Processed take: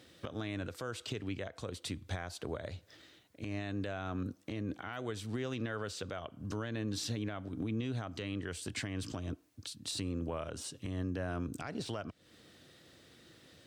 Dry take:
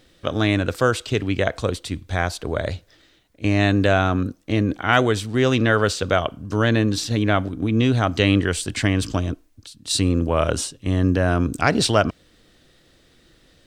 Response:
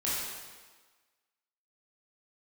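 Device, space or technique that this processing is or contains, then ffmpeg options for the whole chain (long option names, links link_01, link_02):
podcast mastering chain: -af "highpass=frequency=78:width=0.5412,highpass=frequency=78:width=1.3066,deesser=0.5,acompressor=threshold=-31dB:ratio=2.5,alimiter=level_in=0.5dB:limit=-24dB:level=0:latency=1:release=279,volume=-0.5dB,volume=-2.5dB" -ar 44100 -c:a libmp3lame -b:a 96k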